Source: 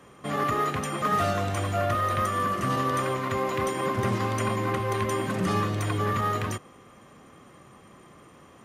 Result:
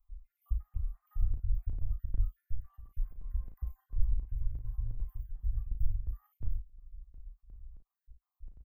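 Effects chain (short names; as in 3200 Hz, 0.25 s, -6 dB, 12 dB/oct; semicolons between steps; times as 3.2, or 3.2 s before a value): random spectral dropouts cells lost 55%; inverse Chebyshev band-stop 140–9600 Hz, stop band 60 dB; tilt -3 dB/oct; in parallel at -1 dB: compressor, threshold -55 dBFS, peak gain reduction 19 dB; on the sum: chopper 2.8 Hz, depth 65%, duty 75%; early reflections 35 ms -7 dB, 54 ms -11.5 dB; gain +14.5 dB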